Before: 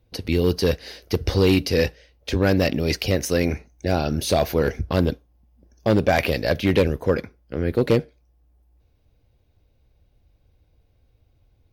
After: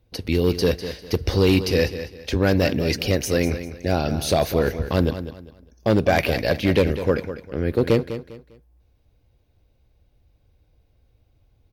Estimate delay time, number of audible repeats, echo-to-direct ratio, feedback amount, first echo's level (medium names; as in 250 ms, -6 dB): 200 ms, 3, -11.0 dB, 29%, -11.5 dB